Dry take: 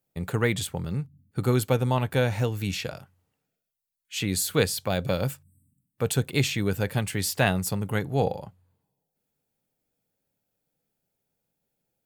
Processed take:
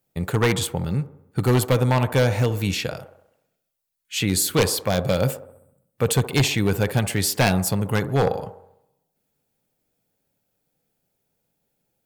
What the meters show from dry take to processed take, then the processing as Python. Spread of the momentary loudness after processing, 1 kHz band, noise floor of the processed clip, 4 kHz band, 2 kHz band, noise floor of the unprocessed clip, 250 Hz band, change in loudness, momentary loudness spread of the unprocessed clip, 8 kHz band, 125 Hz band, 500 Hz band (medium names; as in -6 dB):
8 LU, +5.0 dB, -77 dBFS, +5.5 dB, +3.5 dB, -83 dBFS, +5.0 dB, +5.0 dB, 9 LU, +5.5 dB, +5.0 dB, +4.5 dB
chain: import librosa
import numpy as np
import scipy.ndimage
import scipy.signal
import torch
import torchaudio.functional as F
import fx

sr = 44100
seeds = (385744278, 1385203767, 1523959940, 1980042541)

y = 10.0 ** (-16.0 / 20.0) * (np.abs((x / 10.0 ** (-16.0 / 20.0) + 3.0) % 4.0 - 2.0) - 1.0)
y = fx.echo_wet_bandpass(y, sr, ms=66, feedback_pct=55, hz=610.0, wet_db=-10.5)
y = F.gain(torch.from_numpy(y), 5.5).numpy()